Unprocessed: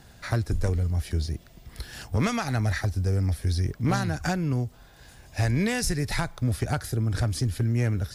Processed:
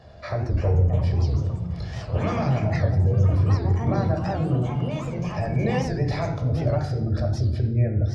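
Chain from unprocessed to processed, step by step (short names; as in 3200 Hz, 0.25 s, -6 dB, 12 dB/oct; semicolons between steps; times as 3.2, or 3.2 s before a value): HPF 76 Hz; spectral gate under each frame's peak -30 dB strong; thirty-one-band EQ 160 Hz -9 dB, 250 Hz -5 dB, 630 Hz +8 dB, 1600 Hz -5 dB, 5000 Hz +8 dB; limiter -22.5 dBFS, peak gain reduction 10 dB; echoes that change speed 0.393 s, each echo +4 st, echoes 3, each echo -6 dB; tape spacing loss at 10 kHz 28 dB; reverb RT60 1.0 s, pre-delay 13 ms, DRR 2.5 dB; record warp 78 rpm, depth 160 cents; gain +3.5 dB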